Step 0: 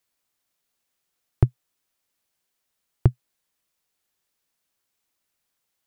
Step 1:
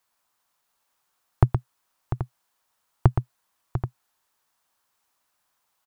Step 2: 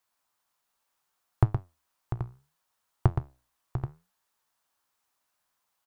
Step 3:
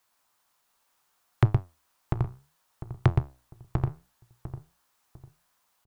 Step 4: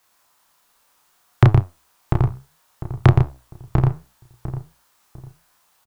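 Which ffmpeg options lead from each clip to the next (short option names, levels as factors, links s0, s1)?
-af "firequalizer=gain_entry='entry(410,0);entry(940,12);entry(2100,2)':delay=0.05:min_phase=1,aecho=1:1:119|696|781:0.422|0.299|0.237"
-af "flanger=delay=9.3:depth=7.9:regen=74:speed=0.7:shape=sinusoidal"
-filter_complex "[0:a]aeval=exprs='0.473*sin(PI/2*2.51*val(0)/0.473)':c=same,asplit=2[s0][s1];[s1]adelay=700,lowpass=f=1200:p=1,volume=0.266,asplit=2[s2][s3];[s3]adelay=700,lowpass=f=1200:p=1,volume=0.28,asplit=2[s4][s5];[s5]adelay=700,lowpass=f=1200:p=1,volume=0.28[s6];[s2][s4][s6]amix=inputs=3:normalize=0[s7];[s0][s7]amix=inputs=2:normalize=0,volume=0.562"
-filter_complex "[0:a]asplit=2[s0][s1];[s1]adelay=31,volume=0.75[s2];[s0][s2]amix=inputs=2:normalize=0,volume=2.51"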